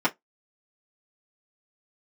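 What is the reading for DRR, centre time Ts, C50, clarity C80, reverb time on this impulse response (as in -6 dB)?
-7.0 dB, 7 ms, 26.5 dB, 39.5 dB, 0.15 s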